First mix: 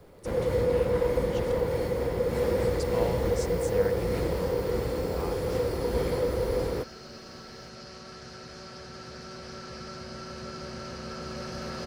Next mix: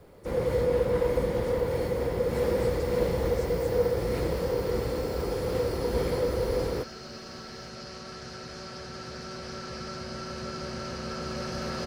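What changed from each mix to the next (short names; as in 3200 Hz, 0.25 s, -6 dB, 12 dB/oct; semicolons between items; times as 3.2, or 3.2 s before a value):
speech -11.5 dB; second sound +3.0 dB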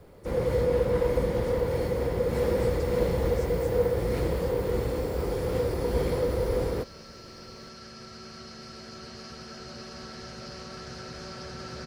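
second sound: entry +2.65 s; master: add low shelf 150 Hz +3.5 dB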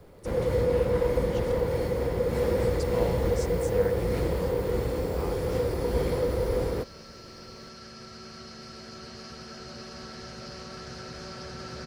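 speech +10.0 dB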